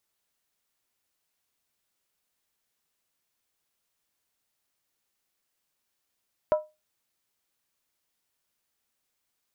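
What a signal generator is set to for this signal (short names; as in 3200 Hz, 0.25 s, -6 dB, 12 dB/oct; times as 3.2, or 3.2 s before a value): skin hit, lowest mode 614 Hz, decay 0.24 s, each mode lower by 9.5 dB, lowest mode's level -15.5 dB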